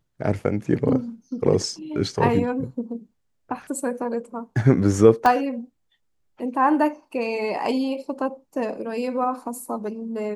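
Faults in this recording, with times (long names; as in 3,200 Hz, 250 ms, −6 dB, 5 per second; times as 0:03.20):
0:05.26: click −9 dBFS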